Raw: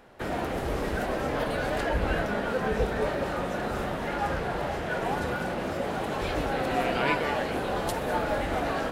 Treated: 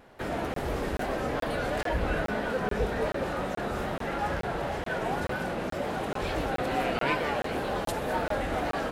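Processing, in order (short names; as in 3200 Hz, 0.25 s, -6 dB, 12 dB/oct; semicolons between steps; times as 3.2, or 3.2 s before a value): in parallel at -5.5 dB: soft clip -21.5 dBFS, distortion -18 dB; on the sum: wow and flutter 65 cents; crackling interface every 0.43 s, samples 1024, zero, from 0.54; gain -4.5 dB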